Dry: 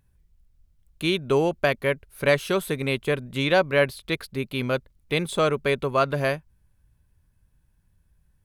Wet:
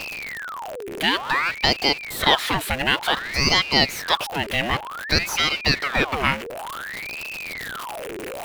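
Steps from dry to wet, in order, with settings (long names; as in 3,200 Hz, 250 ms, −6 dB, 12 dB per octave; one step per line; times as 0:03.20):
converter with a step at zero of −28 dBFS
in parallel at +1.5 dB: downward compressor, threshold −28 dBFS, peak gain reduction 13.5 dB
on the sum: parametric band 2,100 Hz +13 dB 0.91 octaves
ring modulator whose carrier an LFO sweeps 1,500 Hz, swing 75%, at 0.55 Hz
level −3 dB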